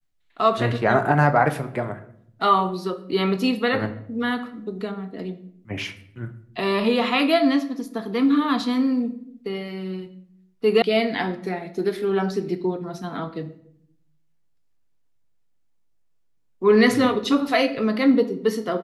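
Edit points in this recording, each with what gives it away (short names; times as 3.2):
10.82 sound cut off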